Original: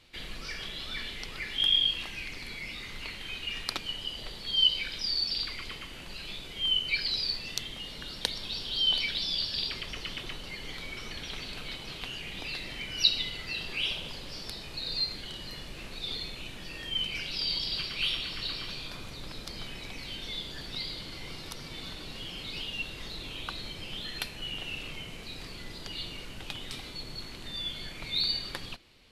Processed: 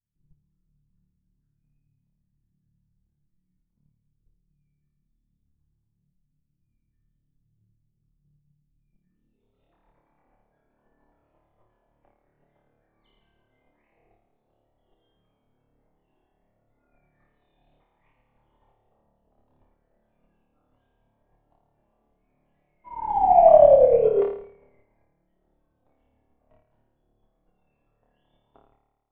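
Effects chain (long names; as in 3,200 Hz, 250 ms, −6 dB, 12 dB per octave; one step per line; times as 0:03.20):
reverb reduction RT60 1.6 s
mains-hum notches 50/100/150 Hz
dynamic equaliser 1,300 Hz, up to +5 dB, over −57 dBFS, Q 2.3
sound drawn into the spectrogram fall, 0:22.83–0:24.22, 500–1,300 Hz −31 dBFS
low-pass filter sweep 190 Hz → 880 Hz, 0:08.91–0:09.58
pitch shifter −4.5 semitones
flutter between parallel walls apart 4.7 metres, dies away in 1.4 s
expander for the loud parts 2.5 to 1, over −40 dBFS
level +8.5 dB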